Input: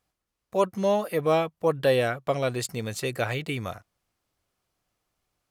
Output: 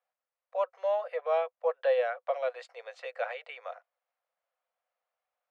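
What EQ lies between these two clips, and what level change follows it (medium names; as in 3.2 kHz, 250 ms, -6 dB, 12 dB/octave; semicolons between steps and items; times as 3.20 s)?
rippled Chebyshev high-pass 490 Hz, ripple 3 dB; tape spacing loss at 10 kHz 36 dB; 0.0 dB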